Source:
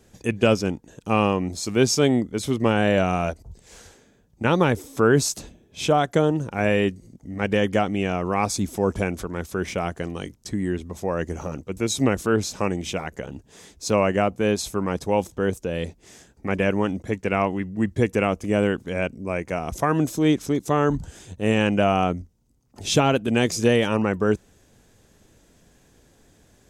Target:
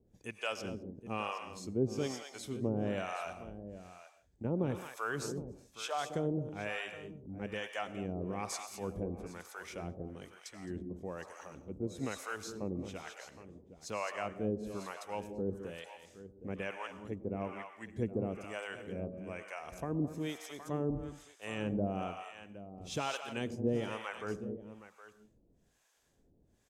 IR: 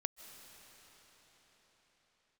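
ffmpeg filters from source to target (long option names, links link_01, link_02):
-filter_complex "[0:a]aecho=1:1:215|767:0.282|0.211[link_01];[1:a]atrim=start_sample=2205,afade=type=out:start_time=0.38:duration=0.01,atrim=end_sample=17199,asetrate=79380,aresample=44100[link_02];[link_01][link_02]afir=irnorm=-1:irlink=0,acrossover=split=640[link_03][link_04];[link_03]aeval=exprs='val(0)*(1-1/2+1/2*cos(2*PI*1.1*n/s))':channel_layout=same[link_05];[link_04]aeval=exprs='val(0)*(1-1/2-1/2*cos(2*PI*1.1*n/s))':channel_layout=same[link_06];[link_05][link_06]amix=inputs=2:normalize=0,volume=-4.5dB"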